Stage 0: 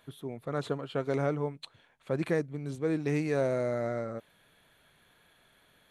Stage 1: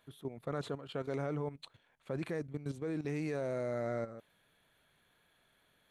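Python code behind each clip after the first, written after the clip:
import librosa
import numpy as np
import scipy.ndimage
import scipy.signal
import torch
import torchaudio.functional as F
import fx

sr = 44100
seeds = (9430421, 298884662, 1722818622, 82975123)

y = fx.level_steps(x, sr, step_db=12)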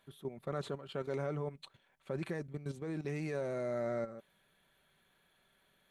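y = x + 0.36 * np.pad(x, (int(5.2 * sr / 1000.0), 0))[:len(x)]
y = y * 10.0 ** (-1.0 / 20.0)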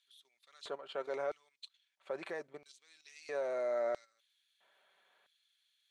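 y = scipy.signal.sosfilt(scipy.signal.butter(2, 7100.0, 'lowpass', fs=sr, output='sos'), x)
y = fx.filter_lfo_highpass(y, sr, shape='square', hz=0.76, low_hz=600.0, high_hz=4100.0, q=1.3)
y = y * 10.0 ** (1.0 / 20.0)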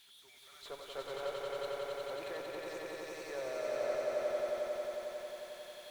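y = x + 0.5 * 10.0 ** (-51.5 / 20.0) * np.sign(x)
y = fx.cheby_harmonics(y, sr, harmonics=(8,), levels_db=(-25,), full_scale_db=-25.0)
y = fx.echo_swell(y, sr, ms=90, loudest=5, wet_db=-4.0)
y = y * 10.0 ** (-5.5 / 20.0)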